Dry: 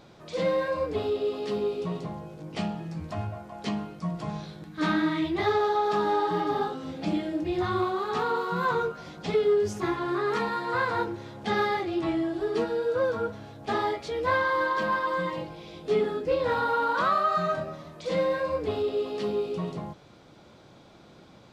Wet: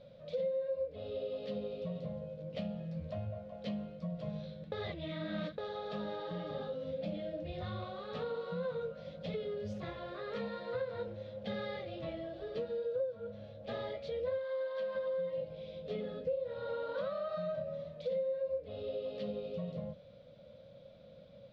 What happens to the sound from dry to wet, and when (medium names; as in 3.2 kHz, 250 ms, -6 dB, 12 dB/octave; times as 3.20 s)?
4.72–5.58 s: reverse
14.38–14.95 s: high-pass 770 Hz 6 dB/octave
whole clip: FFT filter 210 Hz 0 dB, 380 Hz -20 dB, 540 Hz +14 dB, 810 Hz -16 dB, 3.7 kHz -3 dB, 8.5 kHz -26 dB; compression, threshold -30 dBFS; de-hum 45.89 Hz, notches 6; trim -4.5 dB